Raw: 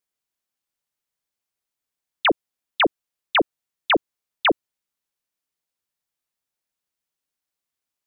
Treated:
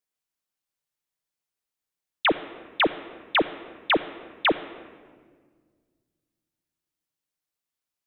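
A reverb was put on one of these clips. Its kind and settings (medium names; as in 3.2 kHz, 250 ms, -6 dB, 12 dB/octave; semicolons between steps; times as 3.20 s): simulated room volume 2200 m³, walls mixed, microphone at 0.5 m; trim -3 dB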